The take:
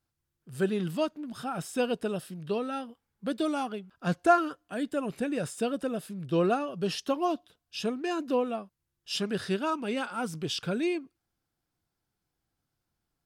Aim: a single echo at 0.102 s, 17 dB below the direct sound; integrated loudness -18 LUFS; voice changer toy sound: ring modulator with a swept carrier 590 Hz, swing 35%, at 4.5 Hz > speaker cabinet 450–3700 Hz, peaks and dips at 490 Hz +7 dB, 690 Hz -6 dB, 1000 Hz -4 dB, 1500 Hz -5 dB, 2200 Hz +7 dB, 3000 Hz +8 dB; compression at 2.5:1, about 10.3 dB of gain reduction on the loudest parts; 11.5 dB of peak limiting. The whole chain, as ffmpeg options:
-af "acompressor=threshold=-31dB:ratio=2.5,alimiter=level_in=7.5dB:limit=-24dB:level=0:latency=1,volume=-7.5dB,aecho=1:1:102:0.141,aeval=exprs='val(0)*sin(2*PI*590*n/s+590*0.35/4.5*sin(2*PI*4.5*n/s))':c=same,highpass=450,equalizer=f=490:t=q:w=4:g=7,equalizer=f=690:t=q:w=4:g=-6,equalizer=f=1k:t=q:w=4:g=-4,equalizer=f=1.5k:t=q:w=4:g=-5,equalizer=f=2.2k:t=q:w=4:g=7,equalizer=f=3k:t=q:w=4:g=8,lowpass=f=3.7k:w=0.5412,lowpass=f=3.7k:w=1.3066,volume=26.5dB"

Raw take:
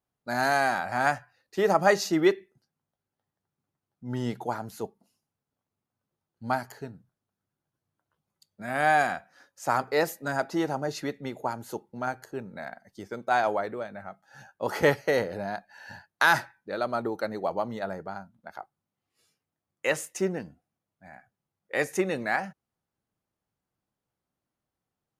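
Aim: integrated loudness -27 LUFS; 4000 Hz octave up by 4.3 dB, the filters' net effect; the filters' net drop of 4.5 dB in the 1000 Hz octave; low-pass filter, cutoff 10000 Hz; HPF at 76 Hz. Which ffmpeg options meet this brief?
-af "highpass=76,lowpass=10k,equalizer=f=1k:t=o:g=-7,equalizer=f=4k:t=o:g=5.5,volume=3dB"

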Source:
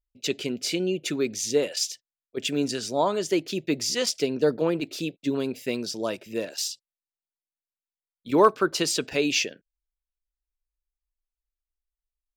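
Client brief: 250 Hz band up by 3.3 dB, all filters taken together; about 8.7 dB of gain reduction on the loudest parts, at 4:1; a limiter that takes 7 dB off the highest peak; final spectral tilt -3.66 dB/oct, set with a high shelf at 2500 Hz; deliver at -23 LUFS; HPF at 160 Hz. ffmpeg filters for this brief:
-af "highpass=160,equalizer=f=250:t=o:g=5,highshelf=f=2.5k:g=-6,acompressor=threshold=-23dB:ratio=4,volume=8.5dB,alimiter=limit=-12.5dB:level=0:latency=1"

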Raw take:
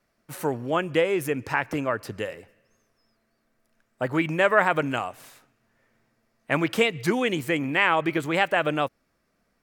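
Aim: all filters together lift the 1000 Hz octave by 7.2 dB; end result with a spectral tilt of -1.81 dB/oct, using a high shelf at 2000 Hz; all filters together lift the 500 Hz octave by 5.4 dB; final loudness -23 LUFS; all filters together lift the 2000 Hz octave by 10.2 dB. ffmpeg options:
-af "equalizer=f=500:t=o:g=4.5,equalizer=f=1k:t=o:g=4.5,highshelf=f=2k:g=3.5,equalizer=f=2k:t=o:g=9,volume=-6dB"

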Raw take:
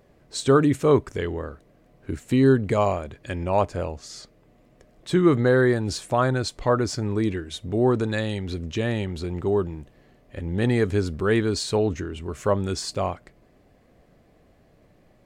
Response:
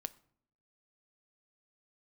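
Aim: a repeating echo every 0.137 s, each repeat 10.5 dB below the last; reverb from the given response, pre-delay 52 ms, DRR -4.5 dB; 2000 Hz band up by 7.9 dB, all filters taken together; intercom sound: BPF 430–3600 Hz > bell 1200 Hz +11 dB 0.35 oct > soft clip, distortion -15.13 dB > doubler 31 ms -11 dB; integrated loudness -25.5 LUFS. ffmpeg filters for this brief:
-filter_complex "[0:a]equalizer=f=2k:t=o:g=8.5,aecho=1:1:137|274|411:0.299|0.0896|0.0269,asplit=2[a][b];[1:a]atrim=start_sample=2205,adelay=52[c];[b][c]afir=irnorm=-1:irlink=0,volume=7dB[d];[a][d]amix=inputs=2:normalize=0,highpass=430,lowpass=3.6k,equalizer=f=1.2k:t=o:w=0.35:g=11,asoftclip=threshold=-5dB,asplit=2[e][f];[f]adelay=31,volume=-11dB[g];[e][g]amix=inputs=2:normalize=0,volume=-7dB"

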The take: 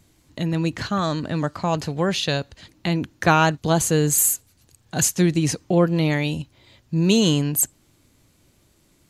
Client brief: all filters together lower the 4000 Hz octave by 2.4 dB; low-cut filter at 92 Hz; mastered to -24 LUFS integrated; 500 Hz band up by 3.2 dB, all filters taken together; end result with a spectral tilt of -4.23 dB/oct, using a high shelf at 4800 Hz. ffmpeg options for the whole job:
-af "highpass=92,equalizer=f=500:t=o:g=4,equalizer=f=4k:t=o:g=-5,highshelf=f=4.8k:g=4,volume=-4dB"

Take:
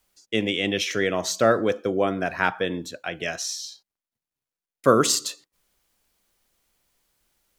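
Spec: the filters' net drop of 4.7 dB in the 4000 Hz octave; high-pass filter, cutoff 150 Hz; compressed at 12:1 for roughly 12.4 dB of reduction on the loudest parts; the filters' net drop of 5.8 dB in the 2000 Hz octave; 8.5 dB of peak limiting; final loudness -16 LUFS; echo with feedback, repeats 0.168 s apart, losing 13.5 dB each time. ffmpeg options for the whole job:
-af "highpass=150,equalizer=f=2k:t=o:g=-7,equalizer=f=4k:t=o:g=-4,acompressor=threshold=-25dB:ratio=12,alimiter=limit=-21.5dB:level=0:latency=1,aecho=1:1:168|336:0.211|0.0444,volume=17.5dB"

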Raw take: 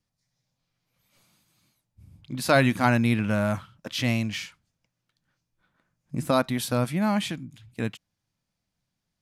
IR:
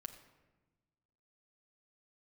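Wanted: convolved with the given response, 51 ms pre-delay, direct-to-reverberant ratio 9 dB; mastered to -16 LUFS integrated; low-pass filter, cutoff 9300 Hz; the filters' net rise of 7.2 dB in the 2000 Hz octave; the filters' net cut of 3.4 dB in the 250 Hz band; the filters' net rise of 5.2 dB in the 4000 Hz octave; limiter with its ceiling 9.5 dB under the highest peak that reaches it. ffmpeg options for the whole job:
-filter_complex "[0:a]lowpass=9.3k,equalizer=f=250:t=o:g=-4,equalizer=f=2k:t=o:g=9,equalizer=f=4k:t=o:g=3.5,alimiter=limit=-13dB:level=0:latency=1,asplit=2[a][b];[1:a]atrim=start_sample=2205,adelay=51[c];[b][c]afir=irnorm=-1:irlink=0,volume=-4.5dB[d];[a][d]amix=inputs=2:normalize=0,volume=9.5dB"

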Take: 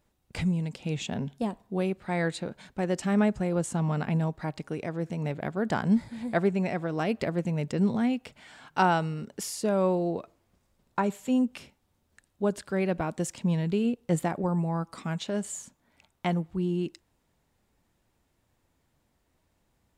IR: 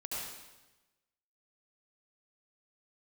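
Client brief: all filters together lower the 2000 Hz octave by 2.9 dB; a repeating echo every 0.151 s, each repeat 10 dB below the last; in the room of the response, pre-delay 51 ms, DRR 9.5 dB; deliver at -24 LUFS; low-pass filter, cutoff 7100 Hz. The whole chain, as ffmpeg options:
-filter_complex "[0:a]lowpass=7.1k,equalizer=f=2k:t=o:g=-4,aecho=1:1:151|302|453|604:0.316|0.101|0.0324|0.0104,asplit=2[a][b];[1:a]atrim=start_sample=2205,adelay=51[c];[b][c]afir=irnorm=-1:irlink=0,volume=-11.5dB[d];[a][d]amix=inputs=2:normalize=0,volume=5dB"

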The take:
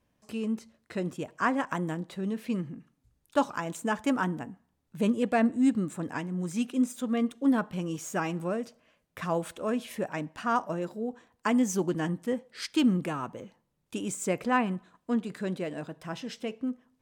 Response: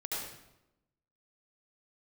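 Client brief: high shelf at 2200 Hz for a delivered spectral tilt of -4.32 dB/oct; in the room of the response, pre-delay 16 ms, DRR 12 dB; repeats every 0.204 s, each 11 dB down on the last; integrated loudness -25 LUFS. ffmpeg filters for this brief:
-filter_complex "[0:a]highshelf=f=2.2k:g=8,aecho=1:1:204|408|612:0.282|0.0789|0.0221,asplit=2[a][b];[1:a]atrim=start_sample=2205,adelay=16[c];[b][c]afir=irnorm=-1:irlink=0,volume=-15dB[d];[a][d]amix=inputs=2:normalize=0,volume=4dB"

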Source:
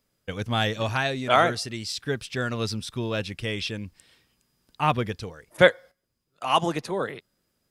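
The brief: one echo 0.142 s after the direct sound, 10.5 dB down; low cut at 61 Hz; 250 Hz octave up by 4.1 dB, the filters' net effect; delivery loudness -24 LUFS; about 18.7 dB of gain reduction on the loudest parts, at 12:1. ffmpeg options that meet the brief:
-af "highpass=61,equalizer=f=250:t=o:g=5.5,acompressor=threshold=-28dB:ratio=12,aecho=1:1:142:0.299,volume=9.5dB"

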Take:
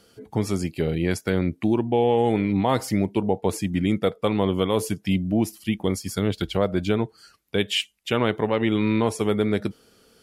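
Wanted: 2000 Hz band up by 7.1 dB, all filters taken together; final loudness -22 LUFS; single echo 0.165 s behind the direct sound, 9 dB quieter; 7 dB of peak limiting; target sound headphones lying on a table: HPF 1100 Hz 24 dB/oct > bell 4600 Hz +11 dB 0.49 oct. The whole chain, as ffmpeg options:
-af "equalizer=f=2k:t=o:g=8,alimiter=limit=-11.5dB:level=0:latency=1,highpass=f=1.1k:w=0.5412,highpass=f=1.1k:w=1.3066,equalizer=f=4.6k:t=o:w=0.49:g=11,aecho=1:1:165:0.355,volume=7.5dB"

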